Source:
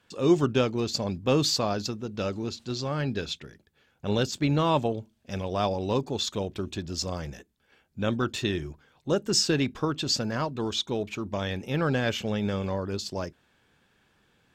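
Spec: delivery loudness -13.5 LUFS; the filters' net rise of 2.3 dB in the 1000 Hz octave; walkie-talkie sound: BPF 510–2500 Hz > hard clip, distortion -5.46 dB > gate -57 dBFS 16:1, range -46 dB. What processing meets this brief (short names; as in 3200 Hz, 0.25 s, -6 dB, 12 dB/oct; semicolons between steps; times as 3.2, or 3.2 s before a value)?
BPF 510–2500 Hz; bell 1000 Hz +3.5 dB; hard clip -30.5 dBFS; gate -57 dBFS 16:1, range -46 dB; gain +23.5 dB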